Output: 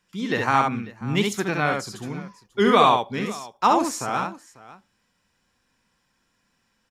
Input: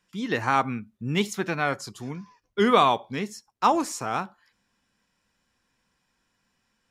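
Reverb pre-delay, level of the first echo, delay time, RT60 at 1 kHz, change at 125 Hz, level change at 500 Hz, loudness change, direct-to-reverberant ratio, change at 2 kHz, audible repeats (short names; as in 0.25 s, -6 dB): none, -3.5 dB, 67 ms, none, +3.0 dB, +3.0 dB, +2.5 dB, none, +3.0 dB, 2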